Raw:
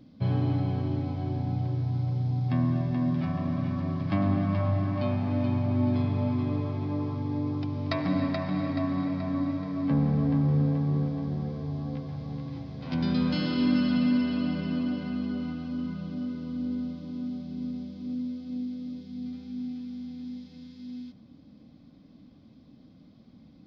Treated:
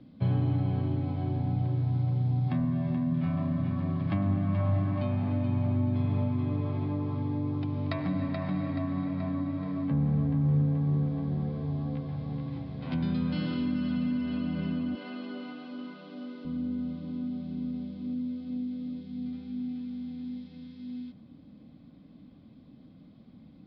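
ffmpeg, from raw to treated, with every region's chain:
-filter_complex "[0:a]asettb=1/sr,asplit=3[s0][s1][s2];[s0]atrim=end=2.444[s3];[s1]atrim=start=2.44:end=3.62,asetpts=PTS-STARTPTS,afade=t=in:d=0.004:c=qsin,afade=t=out:st=1.176:d=0.004:c=qsin,asoftclip=type=hard:threshold=0.126,asplit=2[s4][s5];[s5]adelay=29,volume=0.631[s6];[s4][s6]amix=inputs=2:normalize=0,atrim=end_sample=52038[s7];[s2]atrim=start=3.616[s8];[s3][s7]acrossfade=d=0.004:c1=hsin:c2=qsin[s9];[s9][s8]acrossfade=d=0.004:c1=qsin:c2=hsin,asettb=1/sr,asplit=3[s10][s11][s12];[s10]atrim=end=14.954[s13];[s11]atrim=start=14.95:end=16.45,asetpts=PTS-STARTPTS,afade=t=in:d=0.004:c=qsin,afade=t=out:st=1.496:d=0.004:c=qsin,highpass=f=310:w=0.5412,highpass=f=310:w=1.3066,highshelf=f=3900:g=5.5[s14];[s12]atrim=start=16.446[s15];[s13][s14]acrossfade=d=0.004:c1=hsin:c2=qsin[s16];[s16][s15]acrossfade=d=0.004:c1=qsin:c2=hsin,lowpass=f=4000:w=0.5412,lowpass=f=4000:w=1.3066,equalizer=f=170:t=o:w=0.77:g=2,acrossover=split=160[s17][s18];[s18]acompressor=threshold=0.0282:ratio=6[s19];[s17][s19]amix=inputs=2:normalize=0"

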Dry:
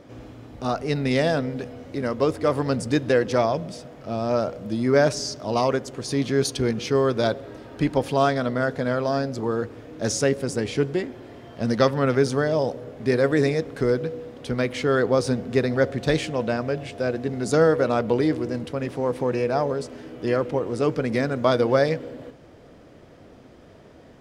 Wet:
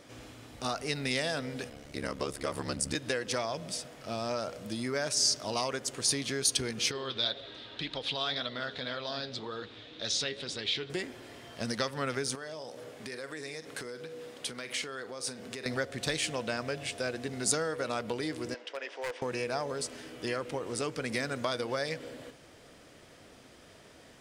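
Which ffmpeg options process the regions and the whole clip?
-filter_complex "[0:a]asettb=1/sr,asplit=3[s0][s1][s2];[s0]atrim=end=1.694[s3];[s1]atrim=start=1.69:end=2.95,asetpts=PTS-STARTPTS,afade=t=in:d=0.004:c=qsin,afade=t=out:st=1.256:d=0.004:c=qsin,lowshelf=f=97:g=10,aeval=exprs='val(0)*sin(2*PI*35*n/s)':c=same[s4];[s2]atrim=start=2.946[s5];[s3][s4]acrossfade=d=0.004:c1=hsin:c2=qsin[s6];[s6][s5]acrossfade=d=0.004:c1=qsin:c2=hsin,asettb=1/sr,asplit=3[s7][s8][s9];[s7]atrim=end=6.914[s10];[s8]atrim=start=6.91:end=10.9,asetpts=PTS-STARTPTS,afade=t=in:d=0.004:c=qsin,afade=t=out:st=3.986:d=0.004:c=qsin,flanger=delay=1.5:depth=8.4:regen=58:speed=1.9:shape=sinusoidal,lowpass=f=3700:t=q:w=6.4,acompressor=threshold=0.0282:ratio=2:attack=3.2:release=140:knee=1:detection=peak[s11];[s9]atrim=start=10.896[s12];[s10][s11]acrossfade=d=0.004:c1=hsin:c2=qsin[s13];[s13][s12]acrossfade=d=0.004:c1=qsin:c2=hsin,asettb=1/sr,asplit=3[s14][s15][s16];[s14]atrim=end=12.354[s17];[s15]atrim=start=12.35:end=15.66,asetpts=PTS-STARTPTS,afade=t=in:d=0.004:c=qsin,afade=t=out:st=3.306:d=0.004:c=qsin,highpass=f=200:p=1,asplit=2[s18][s19];[s19]adelay=45,volume=0.211[s20];[s18][s20]amix=inputs=2:normalize=0,atrim=end_sample=145971,acompressor=threshold=0.0251:ratio=6:attack=3.2:release=140:knee=1:detection=peak[s21];[s16]atrim=start=15.656[s22];[s17][s21]acrossfade=d=0.004:c1=hsin:c2=qsin[s23];[s23][s22]acrossfade=d=0.004:c1=qsin:c2=hsin,asettb=1/sr,asplit=3[s24][s25][s26];[s24]atrim=end=18.544[s27];[s25]atrim=start=18.54:end=19.22,asetpts=PTS-STARTPTS,afade=t=in:d=0.004:c=qsin,afade=t=out:st=0.676:d=0.004:c=qsin,highpass=f=450:w=0.5412,highpass=f=450:w=1.3066,equalizer=f=470:t=q:w=4:g=-3,equalizer=f=770:t=q:w=4:g=-3,equalizer=f=1200:t=q:w=4:g=-6,equalizer=f=2300:t=q:w=4:g=-3,equalizer=f=4100:t=q:w=4:g=-10,lowpass=f=4800:w=0.5412,lowpass=f=4800:w=1.3066,aeval=exprs='0.0668*(abs(mod(val(0)/0.0668+3,4)-2)-1)':c=same[s28];[s26]atrim=start=19.216[s29];[s27][s28]acrossfade=d=0.004:c1=hsin:c2=qsin[s30];[s30][s29]acrossfade=d=0.004:c1=qsin:c2=hsin,equalizer=f=9000:w=2.2:g=6,acompressor=threshold=0.0708:ratio=6,tiltshelf=f=1300:g=-7.5,volume=0.794"

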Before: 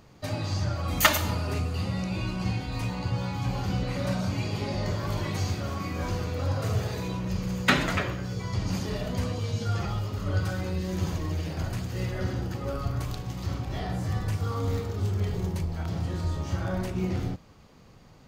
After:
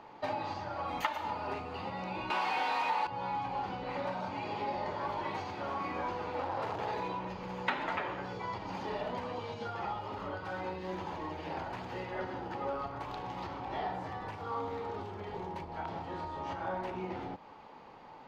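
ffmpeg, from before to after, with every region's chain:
-filter_complex "[0:a]asettb=1/sr,asplit=3[s0][s1][s2];[s0]atrim=end=2.304[s3];[s1]atrim=start=2.3:end=3.07,asetpts=PTS-STARTPTS,afade=t=in:d=0.004:c=qsin,afade=t=out:st=0.766:d=0.004:c=qsin,highpass=f=430:p=1,asplit=2[s4][s5];[s5]highpass=f=720:p=1,volume=112,asoftclip=type=tanh:threshold=0.0944[s6];[s4][s6]amix=inputs=2:normalize=0,lowpass=f=6200:p=1,volume=0.501[s7];[s2]atrim=start=3.066[s8];[s3][s7]acrossfade=d=0.004:c1=hsin:c2=qsin[s9];[s9][s8]acrossfade=d=0.004:c1=qsin:c2=hsin,asettb=1/sr,asplit=3[s10][s11][s12];[s10]atrim=end=6.314[s13];[s11]atrim=start=6.31:end=6.88,asetpts=PTS-STARTPTS,afade=t=in:d=0.004:c=qsin,afade=t=out:st=0.566:d=0.004:c=qsin,highpass=71,asoftclip=type=hard:threshold=0.0335[s14];[s12]atrim=start=6.876[s15];[s13][s14]acrossfade=d=0.004:c1=hsin:c2=qsin[s16];[s16][s15]acrossfade=d=0.004:c1=qsin:c2=hsin,equalizer=f=880:t=o:w=0.33:g=14,acompressor=threshold=0.0251:ratio=8,acrossover=split=260 3700:gain=0.126 1 0.0708[s17][s18][s19];[s17][s18][s19]amix=inputs=3:normalize=0,volume=1.41"

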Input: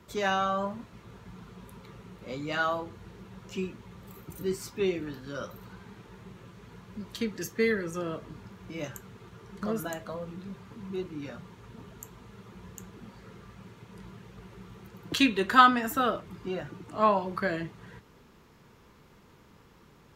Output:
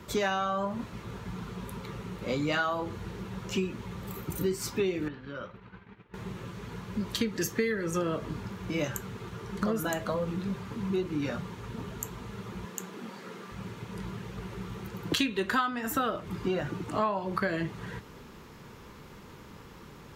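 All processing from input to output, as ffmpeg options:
-filter_complex "[0:a]asettb=1/sr,asplit=3[s0][s1][s2];[s0]atrim=end=5.084[s3];[s1]atrim=start=5.08:end=6.14,asetpts=PTS-STARTPTS,afade=t=in:d=0.004:c=qsin,afade=t=out:st=1.056:d=0.004:c=qsin,agate=range=0.0224:threshold=0.0112:ratio=3:release=100:detection=peak,acompressor=threshold=0.00316:ratio=2.5:attack=3.2:release=140:knee=1:detection=peak,lowpass=f=2500:t=q:w=1.5[s4];[s2]atrim=start=6.136[s5];[s3][s4]acrossfade=d=0.004:c1=hsin:c2=qsin[s6];[s6][s5]acrossfade=d=0.004:c1=qsin:c2=hsin,asettb=1/sr,asplit=3[s7][s8][s9];[s7]atrim=end=12.654[s10];[s8]atrim=start=12.65:end=13.52,asetpts=PTS-STARTPTS,afade=t=in:d=0.004:c=qsin,afade=t=out:st=0.866:d=0.004:c=qsin,highpass=f=190:w=0.5412,highpass=f=190:w=1.3066,bandreject=f=50:t=h:w=6,bandreject=f=100:t=h:w=6,bandreject=f=150:t=h:w=6,bandreject=f=200:t=h:w=6,bandreject=f=250:t=h:w=6,bandreject=f=300:t=h:w=6,bandreject=f=350:t=h:w=6,bandreject=f=400:t=h:w=6,bandreject=f=450:t=h:w=6,bandreject=f=500:t=h:w=6[s11];[s9]atrim=start=13.516[s12];[s10][s11]acrossfade=d=0.004:c1=hsin:c2=qsin[s13];[s13][s12]acrossfade=d=0.004:c1=qsin:c2=hsin,bandreject=f=680:w=22,acompressor=threshold=0.02:ratio=8,volume=2.66"

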